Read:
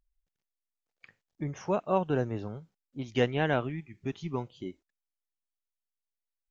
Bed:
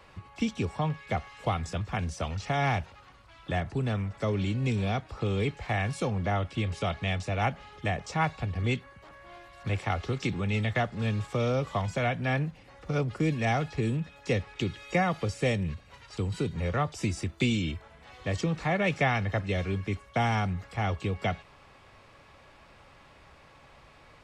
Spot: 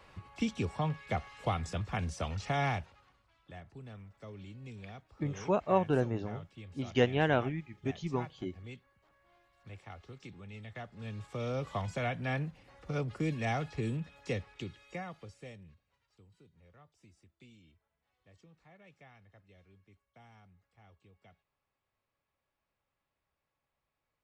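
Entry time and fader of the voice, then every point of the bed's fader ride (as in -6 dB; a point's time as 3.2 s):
3.80 s, -0.5 dB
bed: 2.6 s -3.5 dB
3.44 s -19 dB
10.61 s -19 dB
11.67 s -6 dB
14.21 s -6 dB
16.32 s -32 dB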